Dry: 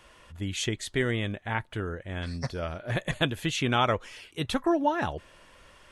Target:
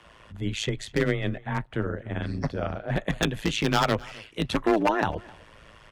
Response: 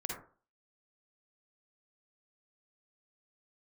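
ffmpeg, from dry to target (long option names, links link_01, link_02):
-af "asetnsamples=nb_out_samples=441:pad=0,asendcmd='0.85 lowpass f 1800;3.18 lowpass f 3900',lowpass=frequency=3200:poles=1,aeval=exprs='0.106*(abs(mod(val(0)/0.106+3,4)-2)-1)':channel_layout=same,tremolo=f=110:d=0.857,afreqshift=14,aecho=1:1:259:0.0708,volume=7.5dB"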